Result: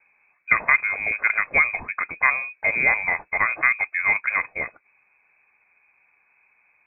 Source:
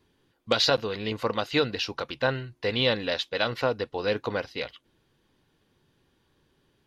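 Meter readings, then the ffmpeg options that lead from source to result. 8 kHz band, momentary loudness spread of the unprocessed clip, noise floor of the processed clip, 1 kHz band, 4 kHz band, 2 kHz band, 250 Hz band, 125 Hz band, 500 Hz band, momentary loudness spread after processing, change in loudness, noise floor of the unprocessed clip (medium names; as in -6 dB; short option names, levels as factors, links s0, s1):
no reading, 8 LU, -65 dBFS, +5.5 dB, under -40 dB, +14.0 dB, -11.5 dB, -11.0 dB, -10.5 dB, 8 LU, +6.5 dB, -70 dBFS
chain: -af "lowpass=f=2200:t=q:w=0.5098,lowpass=f=2200:t=q:w=0.6013,lowpass=f=2200:t=q:w=0.9,lowpass=f=2200:t=q:w=2.563,afreqshift=-2600,volume=2"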